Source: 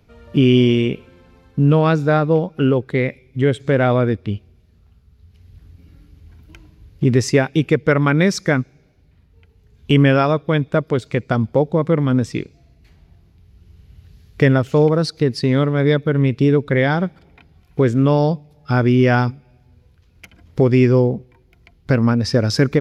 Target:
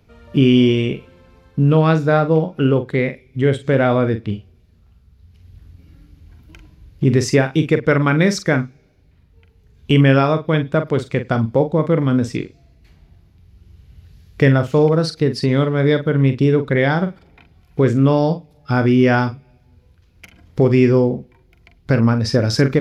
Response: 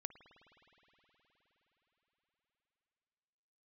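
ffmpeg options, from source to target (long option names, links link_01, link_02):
-filter_complex "[0:a]asplit=2[link_01][link_02];[1:a]atrim=start_sample=2205,atrim=end_sample=3969,adelay=44[link_03];[link_02][link_03]afir=irnorm=-1:irlink=0,volume=-5dB[link_04];[link_01][link_04]amix=inputs=2:normalize=0"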